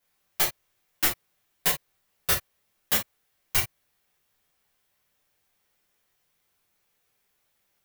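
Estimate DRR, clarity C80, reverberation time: −6.5 dB, 18.5 dB, non-exponential decay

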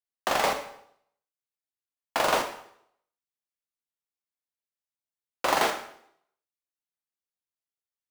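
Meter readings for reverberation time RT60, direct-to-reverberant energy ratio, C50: 0.70 s, 4.5 dB, 9.0 dB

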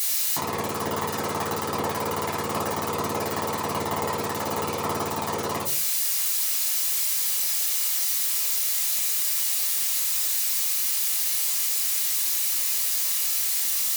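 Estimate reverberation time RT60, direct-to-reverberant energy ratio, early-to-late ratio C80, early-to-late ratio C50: 0.45 s, −6.5 dB, 13.0 dB, 7.5 dB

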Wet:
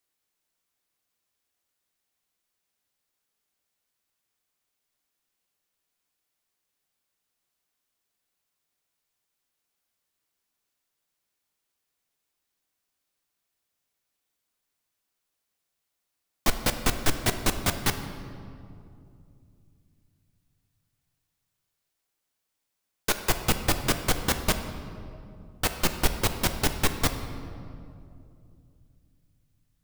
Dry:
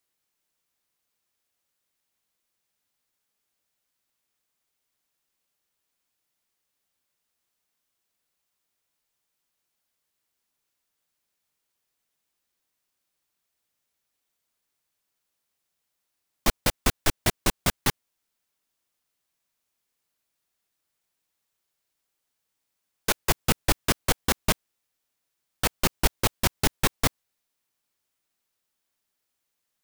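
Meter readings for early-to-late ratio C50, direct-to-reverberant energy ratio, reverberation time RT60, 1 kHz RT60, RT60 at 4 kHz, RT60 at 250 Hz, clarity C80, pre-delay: 8.5 dB, 7.0 dB, 2.5 s, 2.3 s, 1.4 s, 3.5 s, 9.5 dB, 3 ms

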